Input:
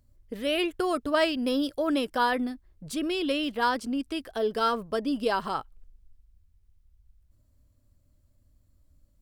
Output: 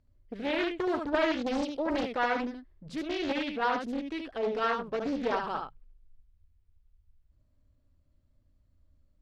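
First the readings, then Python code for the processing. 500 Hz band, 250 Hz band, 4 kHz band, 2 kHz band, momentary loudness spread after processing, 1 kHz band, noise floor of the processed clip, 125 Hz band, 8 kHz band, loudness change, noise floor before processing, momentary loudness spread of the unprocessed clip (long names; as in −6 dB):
−2.5 dB, −3.5 dB, −7.0 dB, −1.5 dB, 9 LU, −3.0 dB, −69 dBFS, −2.5 dB, can't be measured, −3.0 dB, −65 dBFS, 8 LU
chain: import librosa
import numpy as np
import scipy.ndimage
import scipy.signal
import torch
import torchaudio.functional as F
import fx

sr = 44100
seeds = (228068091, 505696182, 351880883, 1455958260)

p1 = scipy.signal.sosfilt(scipy.signal.butter(2, 3900.0, 'lowpass', fs=sr, output='sos'), x)
p2 = fx.hum_notches(p1, sr, base_hz=60, count=3)
p3 = p2 + fx.echo_single(p2, sr, ms=74, db=-5.0, dry=0)
p4 = fx.doppler_dist(p3, sr, depth_ms=0.58)
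y = p4 * 10.0 ** (-4.0 / 20.0)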